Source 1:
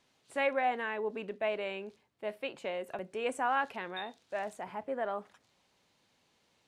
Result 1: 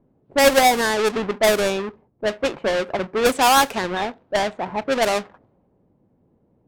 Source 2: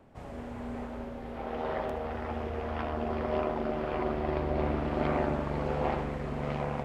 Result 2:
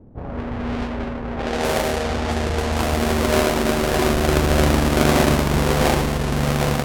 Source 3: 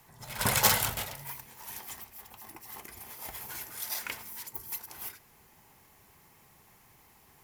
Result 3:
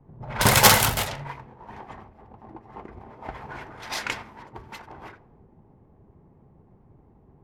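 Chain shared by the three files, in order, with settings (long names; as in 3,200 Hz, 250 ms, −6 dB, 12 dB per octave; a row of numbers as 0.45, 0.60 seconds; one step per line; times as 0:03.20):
each half-wave held at its own peak
low-pass that shuts in the quiet parts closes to 360 Hz, open at −26 dBFS
loudness normalisation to −20 LKFS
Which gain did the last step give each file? +12.0, +8.5, +5.5 decibels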